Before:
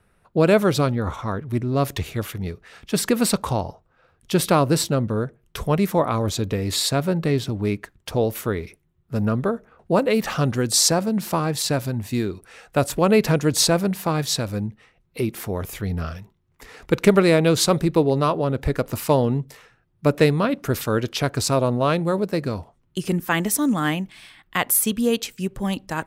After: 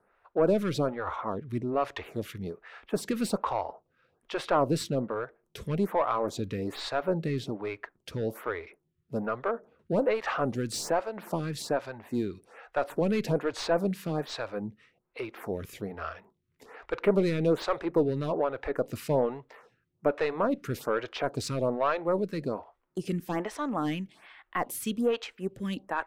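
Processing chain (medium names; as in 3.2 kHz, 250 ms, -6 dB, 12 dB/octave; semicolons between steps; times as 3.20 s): overdrive pedal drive 18 dB, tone 1.2 kHz, clips at -3 dBFS; lamp-driven phase shifter 1.2 Hz; trim -8.5 dB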